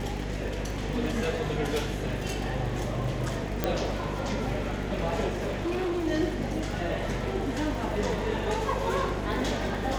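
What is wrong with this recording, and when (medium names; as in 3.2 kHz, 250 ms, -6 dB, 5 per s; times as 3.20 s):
buzz 50 Hz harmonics 10 -34 dBFS
crackle 32 per s -35 dBFS
3.64 s: pop -11 dBFS
5.28–6.06 s: clipped -26 dBFS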